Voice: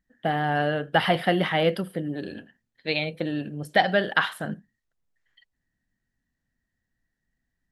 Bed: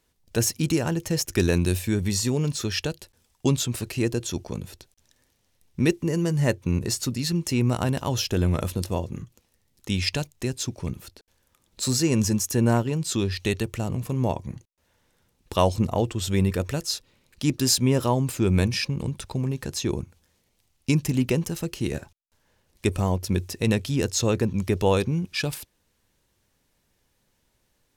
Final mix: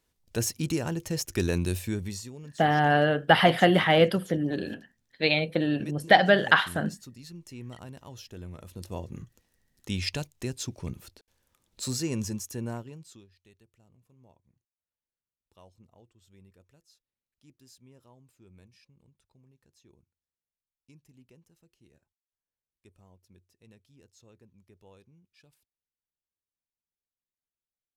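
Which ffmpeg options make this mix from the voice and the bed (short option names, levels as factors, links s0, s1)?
-filter_complex "[0:a]adelay=2350,volume=1.33[s0];[1:a]volume=2.66,afade=t=out:st=1.86:d=0.44:silence=0.199526,afade=t=in:st=8.65:d=0.56:silence=0.199526,afade=t=out:st=11.55:d=1.72:silence=0.0334965[s1];[s0][s1]amix=inputs=2:normalize=0"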